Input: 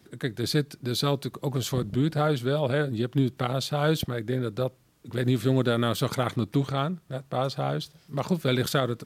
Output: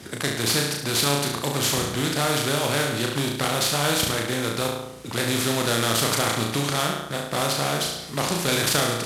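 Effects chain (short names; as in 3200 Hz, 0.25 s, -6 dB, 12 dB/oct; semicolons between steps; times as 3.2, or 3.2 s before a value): CVSD 64 kbps; HPF 49 Hz; flutter echo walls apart 6 m, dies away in 0.54 s; spectral compressor 2:1; gain +2 dB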